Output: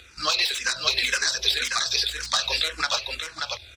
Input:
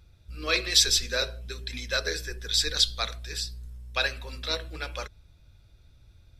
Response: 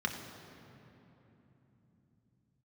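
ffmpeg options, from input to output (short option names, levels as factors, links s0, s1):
-filter_complex "[0:a]asplit=2[s0][s1];[s1]aeval=exprs='0.562*sin(PI/2*8.91*val(0)/0.562)':c=same,volume=0.376[s2];[s0][s2]amix=inputs=2:normalize=0,highpass=77,highshelf=f=2500:g=11,acompressor=threshold=0.1:ratio=12,atempo=1.7,acrossover=split=540 7100:gain=0.2 1 0.1[s3][s4][s5];[s3][s4][s5]amix=inputs=3:normalize=0,aecho=1:1:584:0.596,asplit=2[s6][s7];[s7]afreqshift=-1.9[s8];[s6][s8]amix=inputs=2:normalize=1,volume=1.68"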